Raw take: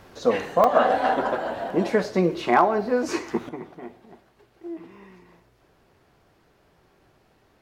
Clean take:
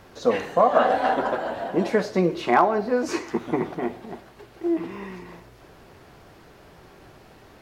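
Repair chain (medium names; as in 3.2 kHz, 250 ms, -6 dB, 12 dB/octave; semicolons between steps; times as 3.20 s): interpolate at 0.64/1.70/2.04/4.50 s, 3 ms; trim 0 dB, from 3.49 s +11.5 dB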